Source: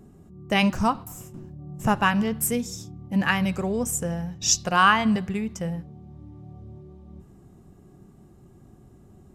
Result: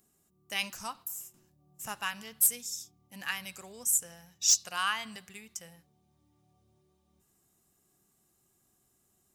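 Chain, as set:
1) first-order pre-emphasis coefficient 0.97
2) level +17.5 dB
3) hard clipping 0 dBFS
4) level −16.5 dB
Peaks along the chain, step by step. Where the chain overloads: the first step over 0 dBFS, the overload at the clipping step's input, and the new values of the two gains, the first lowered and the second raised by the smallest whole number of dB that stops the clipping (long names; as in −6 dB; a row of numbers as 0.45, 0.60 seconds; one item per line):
−9.0, +8.5, 0.0, −16.5 dBFS
step 2, 8.5 dB
step 2 +8.5 dB, step 4 −7.5 dB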